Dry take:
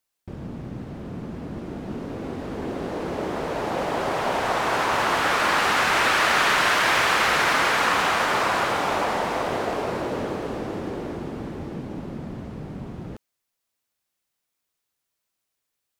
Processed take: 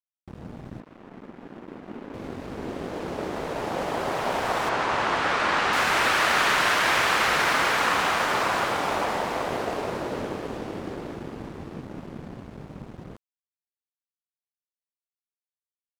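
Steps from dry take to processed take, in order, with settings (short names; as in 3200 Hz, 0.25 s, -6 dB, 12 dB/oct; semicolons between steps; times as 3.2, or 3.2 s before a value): 0.8–2.14 Chebyshev band-pass 240–2200 Hz, order 2; crossover distortion -39 dBFS; 4.69–5.73 air absorption 72 m; gain -1 dB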